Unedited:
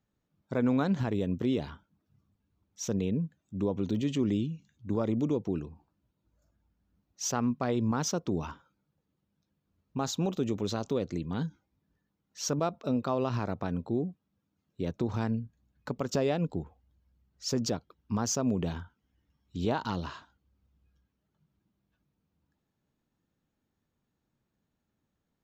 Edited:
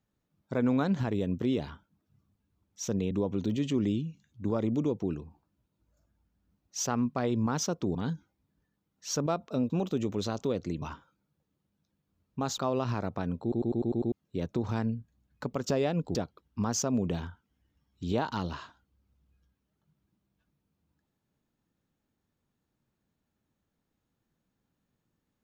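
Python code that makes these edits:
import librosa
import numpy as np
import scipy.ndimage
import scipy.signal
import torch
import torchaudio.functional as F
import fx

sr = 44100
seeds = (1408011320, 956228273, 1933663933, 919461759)

y = fx.edit(x, sr, fx.cut(start_s=3.11, length_s=0.45),
    fx.swap(start_s=8.4, length_s=1.76, other_s=11.28, other_length_s=1.75),
    fx.stutter_over(start_s=13.87, slice_s=0.1, count=7),
    fx.cut(start_s=16.6, length_s=1.08), tone=tone)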